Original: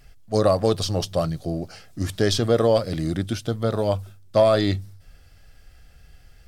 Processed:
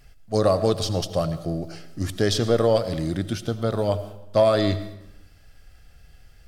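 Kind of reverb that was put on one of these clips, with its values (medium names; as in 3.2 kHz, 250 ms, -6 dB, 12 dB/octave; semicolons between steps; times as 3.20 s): algorithmic reverb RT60 0.92 s, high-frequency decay 0.8×, pre-delay 50 ms, DRR 12.5 dB; trim -1 dB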